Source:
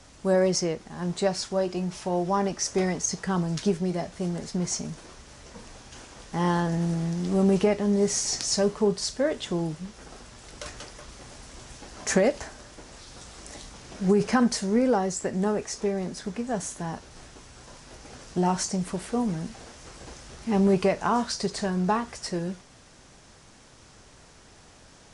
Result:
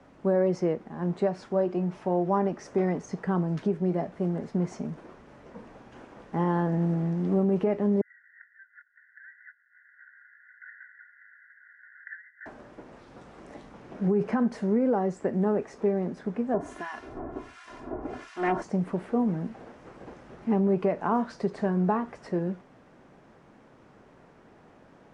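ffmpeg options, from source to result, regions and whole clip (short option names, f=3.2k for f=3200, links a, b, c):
-filter_complex "[0:a]asettb=1/sr,asplit=3[a][b][c];[a]atrim=end=8.014[d];[b]atrim=start=8.01:end=12.46,asetpts=PTS-STARTPTS,afade=t=in:d=0.004:c=qsin,afade=t=out:st=4.446:d=0.004:c=qsin,acompressor=threshold=-34dB:ratio=10:attack=3.2:release=140:knee=1:detection=peak,asuperpass=centerf=1700:order=20:qfactor=2.7,aeval=exprs='0.141*sin(PI/2*1.58*val(0)/0.141)':c=same[e];[c]atrim=start=12.456[f];[d][e]acrossfade=d=0.004:c1=hsin:c2=qsin[g];[g][f]acrossfade=d=0.004:c1=qsin:c2=hsin,asettb=1/sr,asplit=3[h][i][j];[h]atrim=end=16.544[k];[i]atrim=start=16.54:end=18.62,asetpts=PTS-STARTPTS,afade=t=in:d=0.004:c=qsin,afade=t=out:st=2.076:d=0.004:c=qsin,aeval=exprs='0.237*sin(PI/2*2.51*val(0)/0.237)':c=same,aecho=1:1:2.9:0.7,atrim=end_sample=91728,acrossover=split=1300[l][m];[l]aeval=exprs='val(0)*(1-1/2+1/2*cos(2*PI*1.4*n/s))':c=same[n];[m]aeval=exprs='val(0)*(1-1/2-1/2*cos(2*PI*1.4*n/s))':c=same[o];[n][o]amix=inputs=2:normalize=0[p];[j]atrim=start=18.616[q];[k][p]acrossfade=d=0.004:c1=hsin:c2=qsin[r];[r][q]acrossfade=d=0.004:c1=qsin:c2=hsin,tiltshelf=f=800:g=4,alimiter=limit=-16dB:level=0:latency=1:release=182,acrossover=split=150 2500:gain=0.158 1 0.1[s][t][u];[s][t][u]amix=inputs=3:normalize=0"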